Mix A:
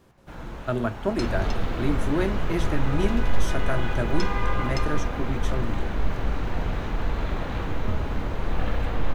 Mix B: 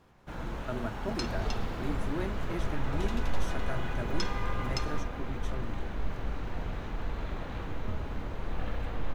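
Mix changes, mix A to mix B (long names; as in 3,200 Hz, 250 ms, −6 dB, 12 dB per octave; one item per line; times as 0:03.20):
speech −10.5 dB
second sound −8.5 dB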